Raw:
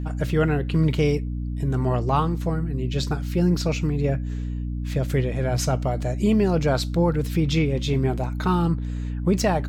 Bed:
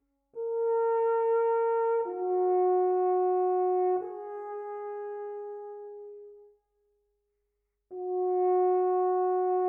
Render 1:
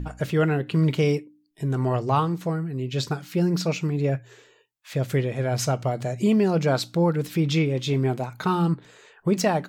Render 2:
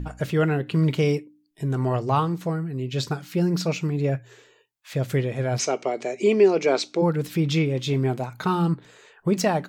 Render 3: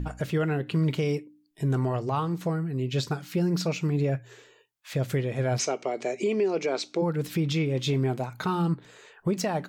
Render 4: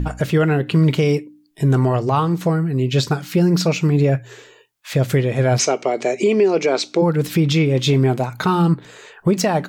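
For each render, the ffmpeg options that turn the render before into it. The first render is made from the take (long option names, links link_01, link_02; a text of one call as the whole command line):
ffmpeg -i in.wav -af "bandreject=frequency=60:width_type=h:width=4,bandreject=frequency=120:width_type=h:width=4,bandreject=frequency=180:width_type=h:width=4,bandreject=frequency=240:width_type=h:width=4,bandreject=frequency=300:width_type=h:width=4" out.wav
ffmpeg -i in.wav -filter_complex "[0:a]asplit=3[link_01][link_02][link_03];[link_01]afade=type=out:start_time=5.58:duration=0.02[link_04];[link_02]highpass=frequency=250:width=0.5412,highpass=frequency=250:width=1.3066,equalizer=frequency=400:width_type=q:width=4:gain=9,equalizer=frequency=1500:width_type=q:width=4:gain=-3,equalizer=frequency=2300:width_type=q:width=4:gain=9,equalizer=frequency=6000:width_type=q:width=4:gain=5,lowpass=frequency=7900:width=0.5412,lowpass=frequency=7900:width=1.3066,afade=type=in:start_time=5.58:duration=0.02,afade=type=out:start_time=7.01:duration=0.02[link_05];[link_03]afade=type=in:start_time=7.01:duration=0.02[link_06];[link_04][link_05][link_06]amix=inputs=3:normalize=0" out.wav
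ffmpeg -i in.wav -af "alimiter=limit=-18dB:level=0:latency=1:release=259" out.wav
ffmpeg -i in.wav -af "volume=10dB" out.wav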